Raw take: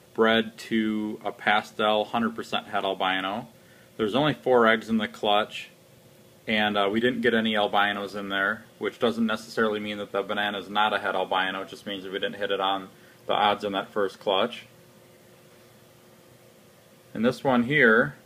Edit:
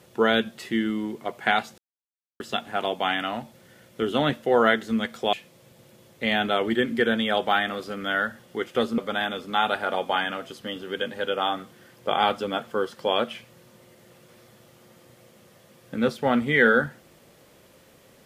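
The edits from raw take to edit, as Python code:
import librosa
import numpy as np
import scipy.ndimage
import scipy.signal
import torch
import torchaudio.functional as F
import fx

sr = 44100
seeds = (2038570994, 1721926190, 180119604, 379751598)

y = fx.edit(x, sr, fx.silence(start_s=1.78, length_s=0.62),
    fx.cut(start_s=5.33, length_s=0.26),
    fx.cut(start_s=9.24, length_s=0.96), tone=tone)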